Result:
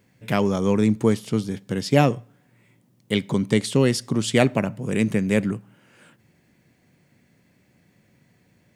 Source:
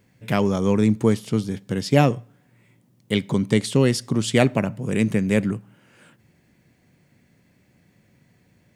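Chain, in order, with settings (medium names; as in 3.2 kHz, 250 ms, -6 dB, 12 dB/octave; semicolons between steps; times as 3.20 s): bass shelf 82 Hz -6 dB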